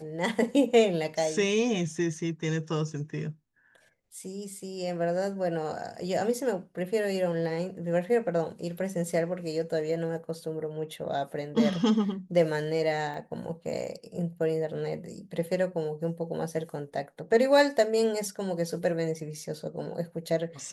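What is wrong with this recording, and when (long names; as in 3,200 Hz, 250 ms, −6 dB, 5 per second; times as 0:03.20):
0:13.14: drop-out 2.9 ms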